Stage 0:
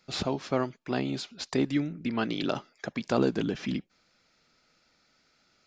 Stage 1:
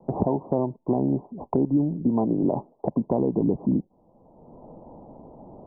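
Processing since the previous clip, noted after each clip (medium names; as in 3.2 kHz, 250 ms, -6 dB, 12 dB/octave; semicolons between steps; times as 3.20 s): steep low-pass 1 kHz 96 dB/octave; peak limiter -20.5 dBFS, peak gain reduction 8 dB; three bands compressed up and down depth 70%; trim +8.5 dB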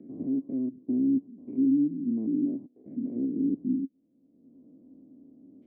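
spectrogram pixelated in time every 100 ms; vowel filter i; peaking EQ 73 Hz +4 dB 1 oct; trim +3.5 dB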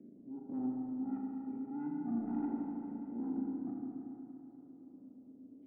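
slow attack 323 ms; saturation -28 dBFS, distortion -13 dB; spring tank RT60 3.5 s, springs 34/39 ms, chirp 65 ms, DRR -2.5 dB; trim -8 dB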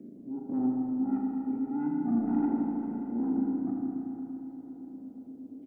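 feedback delay 495 ms, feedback 51%, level -15 dB; trim +8.5 dB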